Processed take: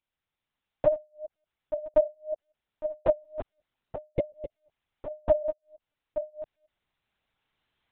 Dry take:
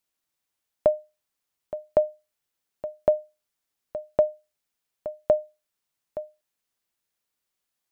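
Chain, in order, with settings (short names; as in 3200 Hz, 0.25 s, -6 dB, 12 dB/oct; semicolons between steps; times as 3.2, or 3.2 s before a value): reverse delay 0.18 s, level -8 dB; recorder AGC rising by 5.1 dB/s; 4.14–4.47 spectral repair 620–1900 Hz after; 3.11–5.1 comb 2.4 ms, depth 83%; LPC vocoder at 8 kHz pitch kept; gain -2 dB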